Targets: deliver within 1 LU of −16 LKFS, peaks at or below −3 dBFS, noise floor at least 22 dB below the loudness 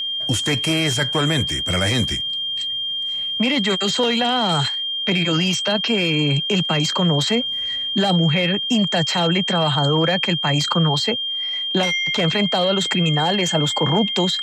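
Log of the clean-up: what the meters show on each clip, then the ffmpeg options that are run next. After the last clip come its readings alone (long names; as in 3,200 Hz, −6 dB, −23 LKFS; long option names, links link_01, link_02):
interfering tone 3,200 Hz; level of the tone −22 dBFS; integrated loudness −18.5 LKFS; sample peak −5.5 dBFS; target loudness −16.0 LKFS
→ -af "bandreject=frequency=3200:width=30"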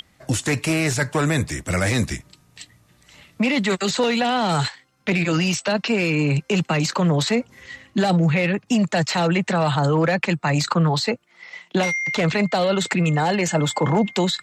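interfering tone none found; integrated loudness −21.0 LKFS; sample peak −6.0 dBFS; target loudness −16.0 LKFS
→ -af "volume=5dB,alimiter=limit=-3dB:level=0:latency=1"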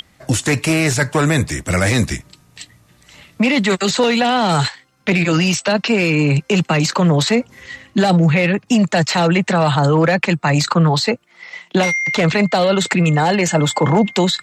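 integrated loudness −16.0 LKFS; sample peak −3.0 dBFS; background noise floor −54 dBFS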